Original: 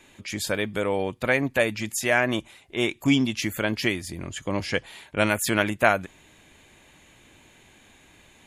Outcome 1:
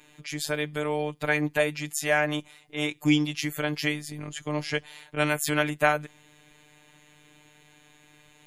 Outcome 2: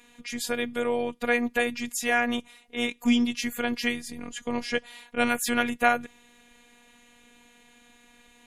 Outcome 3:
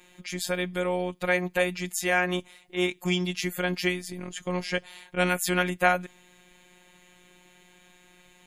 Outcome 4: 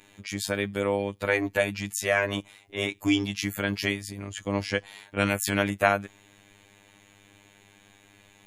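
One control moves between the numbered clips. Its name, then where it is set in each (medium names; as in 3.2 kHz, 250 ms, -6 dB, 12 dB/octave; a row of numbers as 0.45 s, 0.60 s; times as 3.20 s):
robot voice, frequency: 150 Hz, 240 Hz, 180 Hz, 100 Hz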